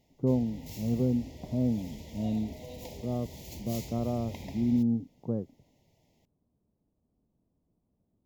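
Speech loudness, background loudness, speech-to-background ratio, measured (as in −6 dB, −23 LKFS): −32.0 LKFS, −45.0 LKFS, 13.0 dB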